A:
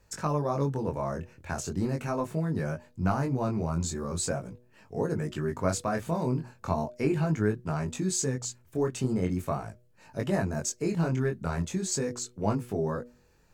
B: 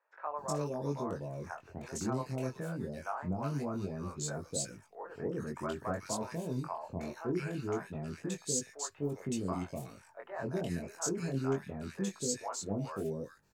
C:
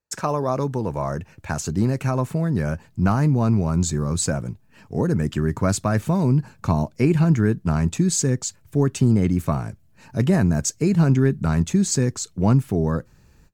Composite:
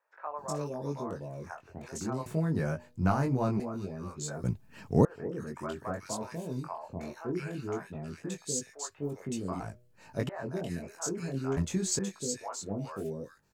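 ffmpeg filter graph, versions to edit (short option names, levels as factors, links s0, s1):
-filter_complex "[0:a]asplit=3[s0][s1][s2];[1:a]asplit=5[s3][s4][s5][s6][s7];[s3]atrim=end=2.262[s8];[s0]atrim=start=2.258:end=3.602[s9];[s4]atrim=start=3.598:end=4.442[s10];[2:a]atrim=start=4.438:end=5.052[s11];[s5]atrim=start=5.048:end=9.602[s12];[s1]atrim=start=9.598:end=10.292[s13];[s6]atrim=start=10.288:end=11.572[s14];[s2]atrim=start=11.568:end=11.992[s15];[s7]atrim=start=11.988[s16];[s8][s9]acrossfade=d=0.004:c1=hsin:c2=hsin[s17];[s17][s10]acrossfade=d=0.004:c1=hsin:c2=hsin[s18];[s18][s11]acrossfade=d=0.004:c1=hsin:c2=hsin[s19];[s19][s12]acrossfade=d=0.004:c1=hsin:c2=hsin[s20];[s20][s13]acrossfade=d=0.004:c1=hsin:c2=hsin[s21];[s21][s14]acrossfade=d=0.004:c1=hsin:c2=hsin[s22];[s22][s15]acrossfade=d=0.004:c1=hsin:c2=hsin[s23];[s23][s16]acrossfade=d=0.004:c1=hsin:c2=hsin"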